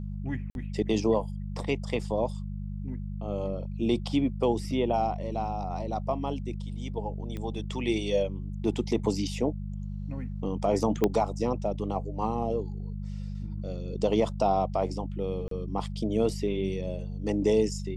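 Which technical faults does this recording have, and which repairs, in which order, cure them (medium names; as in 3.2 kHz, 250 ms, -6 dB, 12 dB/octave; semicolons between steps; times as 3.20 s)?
hum 50 Hz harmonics 4 -35 dBFS
0.50–0.55 s: dropout 51 ms
7.37 s: pop -24 dBFS
11.04 s: pop -11 dBFS
15.48–15.51 s: dropout 33 ms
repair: de-click; de-hum 50 Hz, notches 4; interpolate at 0.50 s, 51 ms; interpolate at 15.48 s, 33 ms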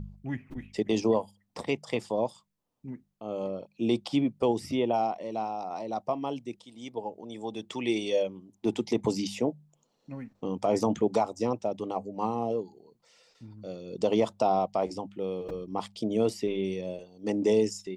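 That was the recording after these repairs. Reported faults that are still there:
7.37 s: pop
11.04 s: pop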